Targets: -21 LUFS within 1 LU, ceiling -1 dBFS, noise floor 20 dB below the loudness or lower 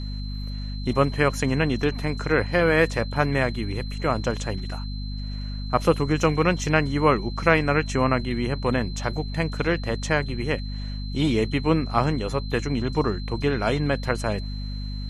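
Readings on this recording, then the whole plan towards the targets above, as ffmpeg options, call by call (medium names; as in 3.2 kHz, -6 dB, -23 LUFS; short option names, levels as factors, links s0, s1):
hum 50 Hz; highest harmonic 250 Hz; hum level -28 dBFS; steady tone 4.1 kHz; tone level -41 dBFS; loudness -24.5 LUFS; peak level -3.5 dBFS; loudness target -21.0 LUFS
-> -af "bandreject=f=50:t=h:w=6,bandreject=f=100:t=h:w=6,bandreject=f=150:t=h:w=6,bandreject=f=200:t=h:w=6,bandreject=f=250:t=h:w=6"
-af "bandreject=f=4100:w=30"
-af "volume=1.5,alimiter=limit=0.891:level=0:latency=1"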